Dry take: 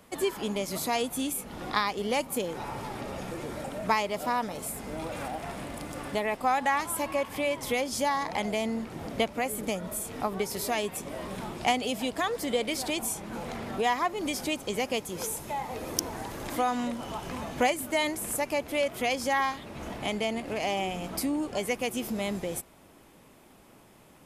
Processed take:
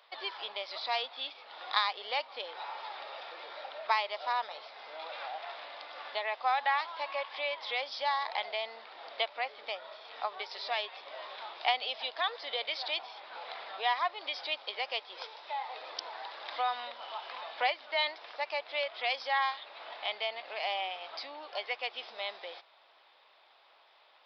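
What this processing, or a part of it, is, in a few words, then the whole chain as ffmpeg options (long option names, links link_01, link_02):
musical greeting card: -af "aresample=11025,aresample=44100,highpass=frequency=650:width=0.5412,highpass=frequency=650:width=1.3066,equalizer=frequency=3700:width_type=o:width=0.38:gain=8,volume=-2.5dB"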